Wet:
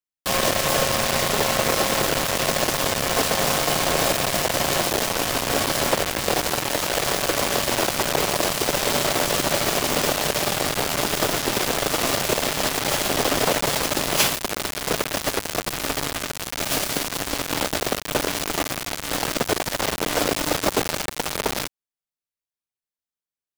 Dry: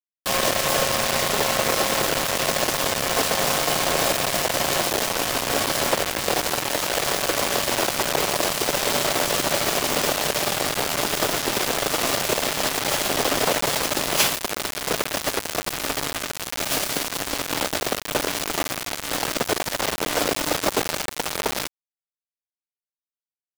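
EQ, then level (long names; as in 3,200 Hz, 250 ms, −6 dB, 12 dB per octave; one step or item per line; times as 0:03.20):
low-shelf EQ 250 Hz +4.5 dB
0.0 dB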